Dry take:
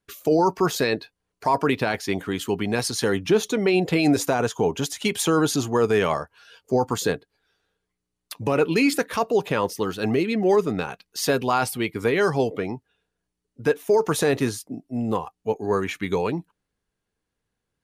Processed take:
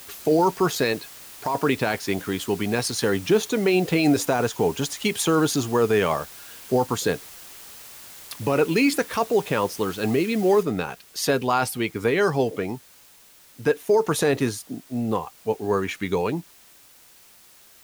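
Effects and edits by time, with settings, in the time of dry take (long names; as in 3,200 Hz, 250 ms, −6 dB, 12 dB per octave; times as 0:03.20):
0:00.92–0:01.55: downward compressor 4 to 1, threshold −21 dBFS
0:10.63: noise floor change −43 dB −52 dB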